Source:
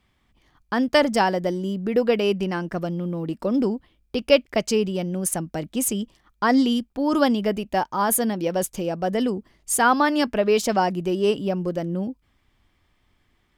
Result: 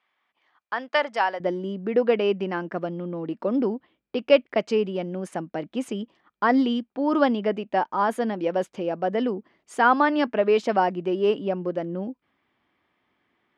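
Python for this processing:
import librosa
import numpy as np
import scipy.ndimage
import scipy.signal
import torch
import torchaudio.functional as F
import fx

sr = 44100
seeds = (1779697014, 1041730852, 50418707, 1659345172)

y = fx.bandpass_edges(x, sr, low_hz=fx.steps((0.0, 770.0), (1.4, 240.0)), high_hz=2600.0)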